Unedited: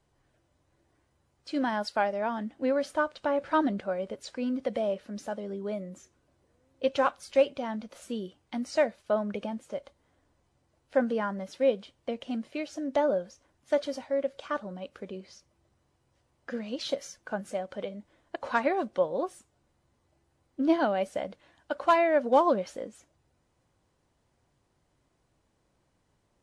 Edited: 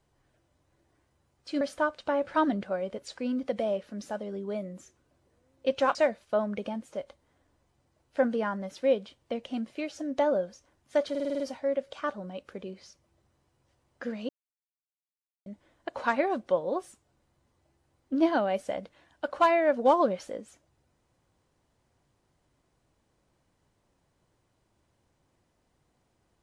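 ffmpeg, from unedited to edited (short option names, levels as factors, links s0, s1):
-filter_complex "[0:a]asplit=11[s0][s1][s2][s3][s4][s5][s6][s7][s8][s9][s10];[s0]atrim=end=1.612[s11];[s1]atrim=start=2.778:end=7.122[s12];[s2]atrim=start=8.718:end=13.922[s13];[s3]atrim=start=13.868:end=13.922[s14];[s4]atrim=start=13.868:end=13.922[s15];[s5]atrim=start=13.868:end=13.922[s16];[s6]atrim=start=13.868:end=13.922[s17];[s7]atrim=start=13.868:end=13.922[s18];[s8]atrim=start=13.868:end=16.76,asetpts=PTS-STARTPTS,afade=t=out:st=2.888:d=0.004:c=hsin[s19];[s9]atrim=start=16.76:end=17.93,asetpts=PTS-STARTPTS,volume=0[s20];[s10]atrim=start=17.93,asetpts=PTS-STARTPTS,afade=t=in:d=0.004:c=hsin[s21];[s11][s12]acrossfade=d=0.004:c1=hsin:c2=hsin[s22];[s22][s13]acrossfade=d=0.004:c1=hsin:c2=hsin[s23];[s23][s14]acrossfade=d=0.004:c1=hsin:c2=hsin[s24];[s24][s15]acrossfade=d=0.004:c1=hsin:c2=hsin[s25];[s25][s16]acrossfade=d=0.004:c1=hsin:c2=hsin[s26];[s26][s17]acrossfade=d=0.004:c1=hsin:c2=hsin[s27];[s27][s18]acrossfade=d=0.004:c1=hsin:c2=hsin[s28];[s19][s20][s21]concat=n=3:v=0:a=1[s29];[s28][s29]acrossfade=d=0.004:c1=hsin:c2=hsin"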